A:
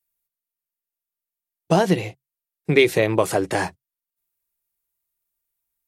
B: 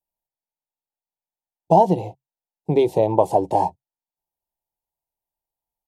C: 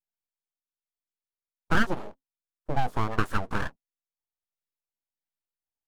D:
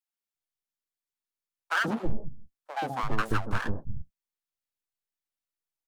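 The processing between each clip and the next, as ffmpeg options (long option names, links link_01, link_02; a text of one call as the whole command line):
ffmpeg -i in.wav -af "firequalizer=gain_entry='entry(420,0);entry(900,12);entry(1300,-29);entry(3000,-12)':delay=0.05:min_phase=1,volume=-1dB" out.wav
ffmpeg -i in.wav -filter_complex "[0:a]acrossover=split=600[link_01][link_02];[link_01]aeval=exprs='val(0)*(1-0.5/2+0.5/2*cos(2*PI*1.4*n/s))':channel_layout=same[link_03];[link_02]aeval=exprs='val(0)*(1-0.5/2-0.5/2*cos(2*PI*1.4*n/s))':channel_layout=same[link_04];[link_03][link_04]amix=inputs=2:normalize=0,aeval=exprs='abs(val(0))':channel_layout=same,volume=-4.5dB" out.wav
ffmpeg -i in.wav -filter_complex "[0:a]acrossover=split=160|650[link_01][link_02][link_03];[link_02]adelay=130[link_04];[link_01]adelay=340[link_05];[link_05][link_04][link_03]amix=inputs=3:normalize=0" out.wav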